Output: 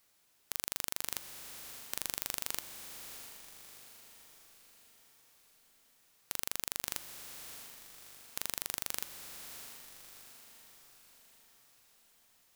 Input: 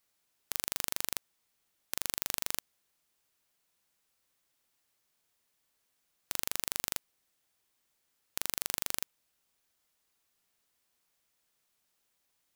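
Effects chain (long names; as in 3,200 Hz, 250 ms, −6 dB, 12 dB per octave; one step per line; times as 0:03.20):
brickwall limiter −13.5 dBFS, peak gain reduction 9.5 dB
feedback delay with all-pass diffusion 681 ms, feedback 52%, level −9 dB
level +7 dB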